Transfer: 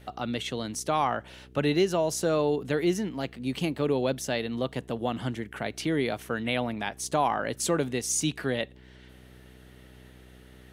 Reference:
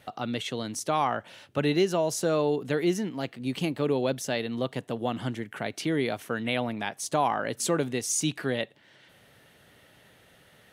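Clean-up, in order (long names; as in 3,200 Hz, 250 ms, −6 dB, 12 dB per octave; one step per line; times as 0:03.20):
hum removal 62.8 Hz, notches 7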